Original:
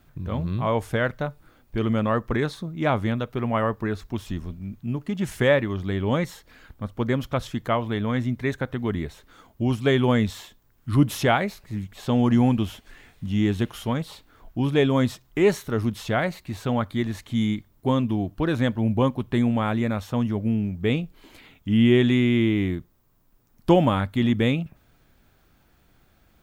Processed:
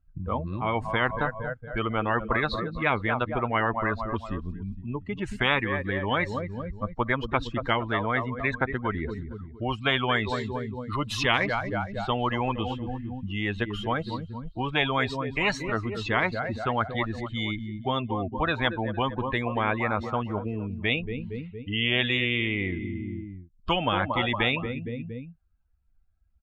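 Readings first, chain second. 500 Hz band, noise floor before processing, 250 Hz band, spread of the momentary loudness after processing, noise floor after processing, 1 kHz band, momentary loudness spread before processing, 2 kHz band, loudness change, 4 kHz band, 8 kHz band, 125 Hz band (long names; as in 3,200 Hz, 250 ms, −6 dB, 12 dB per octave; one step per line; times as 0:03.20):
−5.0 dB, −61 dBFS, −8.5 dB, 10 LU, −59 dBFS, +2.0 dB, 12 LU, +4.5 dB, −3.5 dB, +4.0 dB, −7.0 dB, −6.5 dB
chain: spectral dynamics exaggerated over time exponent 2
low-pass filter 1,400 Hz 12 dB per octave
on a send: repeating echo 231 ms, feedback 44%, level −22 dB
on the sum: every bin compressed towards the loudest bin 10 to 1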